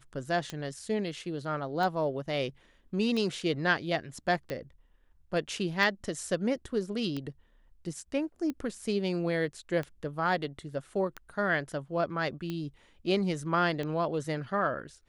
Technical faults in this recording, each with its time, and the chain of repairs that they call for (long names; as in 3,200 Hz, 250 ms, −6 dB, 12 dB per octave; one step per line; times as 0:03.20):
scratch tick 45 rpm −22 dBFS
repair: click removal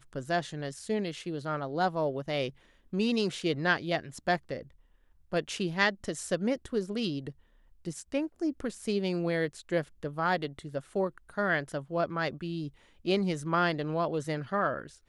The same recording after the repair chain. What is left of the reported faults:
none of them is left